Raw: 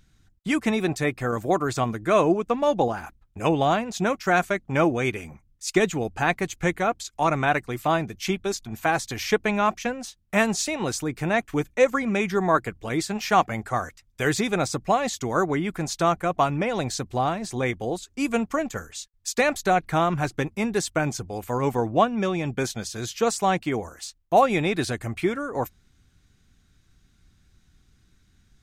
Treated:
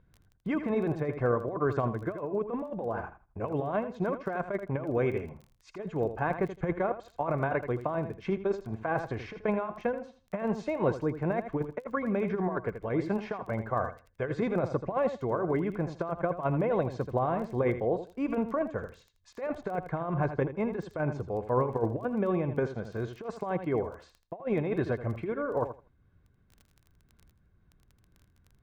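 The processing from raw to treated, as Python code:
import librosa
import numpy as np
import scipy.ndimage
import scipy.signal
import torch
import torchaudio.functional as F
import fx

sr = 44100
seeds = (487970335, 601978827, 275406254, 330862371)

y = scipy.signal.sosfilt(scipy.signal.butter(2, 1100.0, 'lowpass', fs=sr, output='sos'), x)
y = fx.low_shelf(y, sr, hz=70.0, db=-10.5)
y = y + 0.38 * np.pad(y, (int(1.9 * sr / 1000.0), 0))[:len(y)]
y = fx.over_compress(y, sr, threshold_db=-25.0, ratio=-0.5)
y = fx.dmg_crackle(y, sr, seeds[0], per_s=10.0, level_db=-39.0)
y = fx.echo_feedback(y, sr, ms=81, feedback_pct=19, wet_db=-10.5)
y = fx.am_noise(y, sr, seeds[1], hz=5.7, depth_pct=60)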